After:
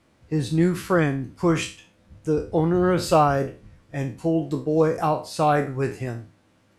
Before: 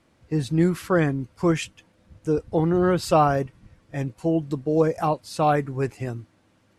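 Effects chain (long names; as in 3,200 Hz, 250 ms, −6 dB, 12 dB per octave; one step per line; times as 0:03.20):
peak hold with a decay on every bin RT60 0.35 s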